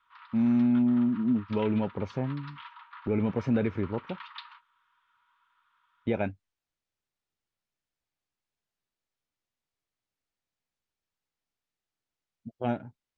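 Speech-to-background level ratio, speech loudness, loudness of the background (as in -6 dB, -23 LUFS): 19.0 dB, -29.0 LUFS, -48.0 LUFS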